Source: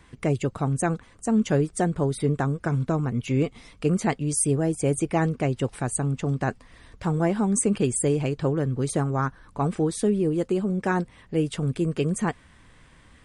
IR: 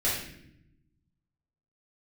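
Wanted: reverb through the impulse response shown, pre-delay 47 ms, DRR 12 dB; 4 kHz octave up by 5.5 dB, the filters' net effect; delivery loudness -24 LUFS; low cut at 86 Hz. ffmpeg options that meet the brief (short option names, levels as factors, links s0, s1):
-filter_complex "[0:a]highpass=86,equalizer=f=4000:t=o:g=7.5,asplit=2[s0][s1];[1:a]atrim=start_sample=2205,adelay=47[s2];[s1][s2]afir=irnorm=-1:irlink=0,volume=0.0794[s3];[s0][s3]amix=inputs=2:normalize=0,volume=1.12"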